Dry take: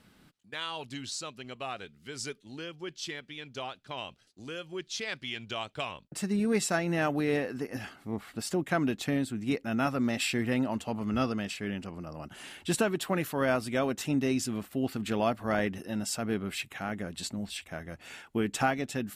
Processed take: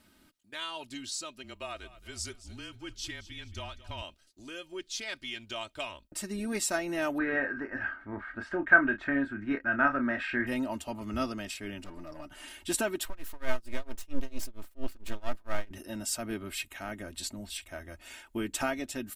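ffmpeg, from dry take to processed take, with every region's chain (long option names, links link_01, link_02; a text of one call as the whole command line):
ffmpeg -i in.wav -filter_complex "[0:a]asettb=1/sr,asplit=3[link_01][link_02][link_03];[link_01]atrim=end=1.434[link_04];[link_02]atrim=start=1.43:end=4.02,asetpts=PTS-STARTPTS,afade=type=in:duration=0.004:curve=qsin,afade=type=out:start_time=2.586:duration=0.004:curve=qsin,asubboost=boost=12:cutoff=140,afreqshift=-33,aecho=1:1:221|442|663|884:0.15|0.0628|0.0264|0.0111,atrim=end_sample=114219[link_05];[link_03]atrim=start=4.016[link_06];[link_04][link_05]acrossfade=duration=0.004:curve1=hsin:curve2=qsin[link_07];[link_07][link_06]acrossfade=duration=0.004:curve1=qsin:curve2=hsin,asettb=1/sr,asplit=3[link_08][link_09][link_10];[link_08]atrim=end=7.184[link_11];[link_09]atrim=start=7.18:end=10.47,asetpts=PTS-STARTPTS,afade=type=in:duration=0.004:curve=qsin,afade=type=out:start_time=3.286:duration=0.004:curve=qsin,lowpass=frequency=1600:width_type=q:width=7.2,asplit=2[link_12][link_13];[link_13]adelay=29,volume=-8.5dB[link_14];[link_12][link_14]amix=inputs=2:normalize=0,atrim=end_sample=145089[link_15];[link_10]atrim=start=10.466[link_16];[link_11][link_15]acrossfade=duration=0.004:curve1=hsin:curve2=qsin[link_17];[link_17][link_16]acrossfade=duration=0.004:curve1=qsin:curve2=hsin,asettb=1/sr,asplit=3[link_18][link_19][link_20];[link_18]atrim=end=11.844[link_21];[link_19]atrim=start=11.84:end=12.48,asetpts=PTS-STARTPTS,afade=type=in:duration=0.004:curve=qsin,afade=type=out:start_time=0.636:duration=0.004:curve=qsin,highshelf=frequency=4000:gain=-6,aeval=exprs='clip(val(0),-1,0.0168)':channel_layout=same,aecho=1:1:6.7:0.65,atrim=end_sample=28224[link_22];[link_20]atrim=start=12.476[link_23];[link_21][link_22]acrossfade=duration=0.004:curve1=hsin:curve2=qsin[link_24];[link_24][link_23]acrossfade=duration=0.004:curve1=qsin:curve2=hsin,asettb=1/sr,asplit=3[link_25][link_26][link_27];[link_25]atrim=end=13.054[link_28];[link_26]atrim=start=13.05:end=15.71,asetpts=PTS-STARTPTS,afade=type=in:duration=0.004:curve=qsin,afade=type=out:start_time=2.656:duration=0.004:curve=qsin,highshelf=frequency=5600:gain=-4,aeval=exprs='max(val(0),0)':channel_layout=same,tremolo=f=4.4:d=0.96[link_29];[link_27]atrim=start=15.706[link_30];[link_28][link_29]acrossfade=duration=0.004:curve1=hsin:curve2=qsin[link_31];[link_31][link_30]acrossfade=duration=0.004:curve1=qsin:curve2=hsin,highshelf=frequency=7200:gain=8.5,aecho=1:1:3.2:0.62,asubboost=boost=5:cutoff=57,volume=-4dB" out.wav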